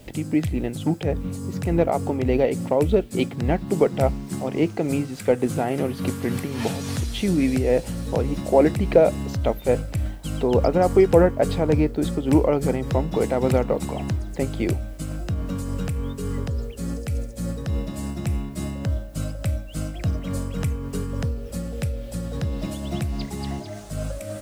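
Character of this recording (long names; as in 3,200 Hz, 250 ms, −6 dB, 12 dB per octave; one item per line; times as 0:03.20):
a quantiser's noise floor 10 bits, dither triangular
tremolo triangle 3.5 Hz, depth 40%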